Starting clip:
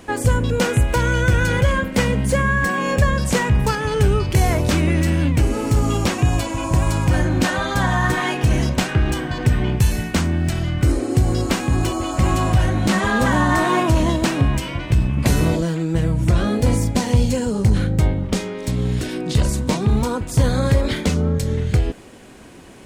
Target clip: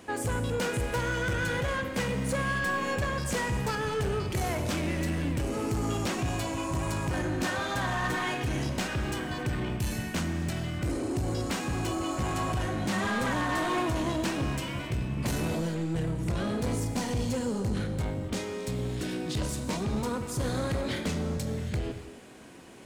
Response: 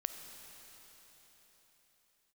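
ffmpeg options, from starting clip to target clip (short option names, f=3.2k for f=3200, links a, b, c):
-filter_complex "[0:a]highpass=f=120:p=1,asoftclip=type=tanh:threshold=-18.5dB[a];[1:a]atrim=start_sample=2205,afade=t=out:st=0.34:d=0.01,atrim=end_sample=15435[b];[a][b]afir=irnorm=-1:irlink=0,volume=-5.5dB"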